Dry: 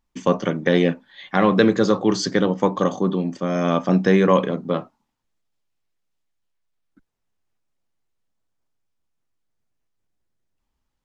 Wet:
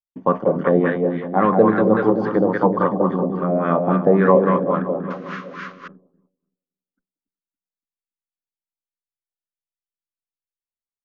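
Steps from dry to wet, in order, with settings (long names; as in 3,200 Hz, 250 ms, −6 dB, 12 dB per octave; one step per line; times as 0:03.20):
running median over 5 samples
echo with a time of its own for lows and highs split 360 Hz, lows 284 ms, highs 189 ms, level −3.5 dB
sound drawn into the spectrogram noise, 0:05.10–0:05.88, 990–6,900 Hz −29 dBFS
auto-filter low-pass sine 3.6 Hz 620–1,600 Hz
downward expander −39 dBFS
level −2 dB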